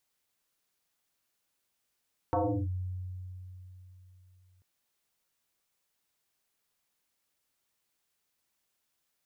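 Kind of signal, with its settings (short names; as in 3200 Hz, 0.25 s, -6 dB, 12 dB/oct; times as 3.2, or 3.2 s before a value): FM tone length 2.29 s, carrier 91.8 Hz, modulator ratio 2.22, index 4.8, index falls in 0.35 s linear, decay 3.57 s, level -24 dB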